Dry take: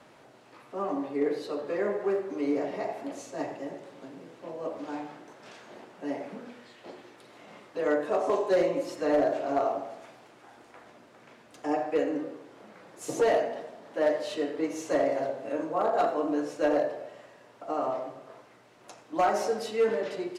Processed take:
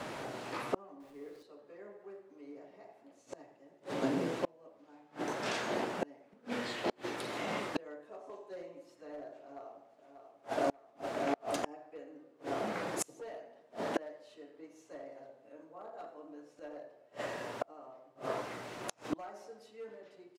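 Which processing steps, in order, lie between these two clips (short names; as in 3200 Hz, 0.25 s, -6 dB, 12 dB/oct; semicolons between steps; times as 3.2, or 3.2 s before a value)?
1–1.43 zero-crossing step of -35.5 dBFS; 9.39–10.04 echo throw 0.59 s, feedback 60%, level -7.5 dB; flipped gate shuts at -33 dBFS, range -35 dB; gain +13 dB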